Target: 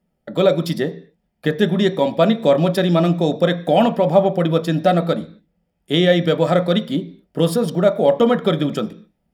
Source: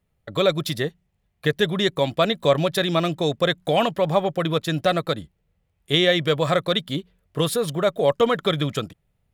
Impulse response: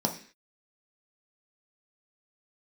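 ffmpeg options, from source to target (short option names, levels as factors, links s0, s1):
-filter_complex "[0:a]asplit=2[s0][s1];[1:a]atrim=start_sample=2205,lowpass=4500[s2];[s1][s2]afir=irnorm=-1:irlink=0,volume=0.376[s3];[s0][s3]amix=inputs=2:normalize=0,volume=0.794"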